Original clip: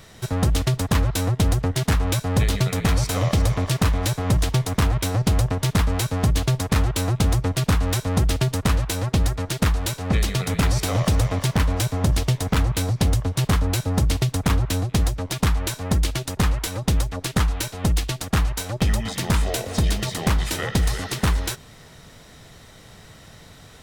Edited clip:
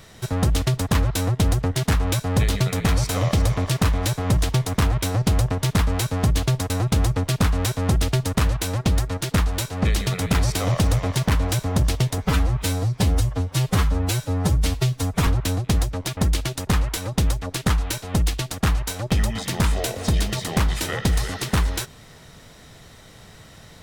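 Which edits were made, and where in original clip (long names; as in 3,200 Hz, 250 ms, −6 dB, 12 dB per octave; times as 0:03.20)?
0:06.70–0:06.98: remove
0:12.46–0:14.52: time-stretch 1.5×
0:15.42–0:15.87: remove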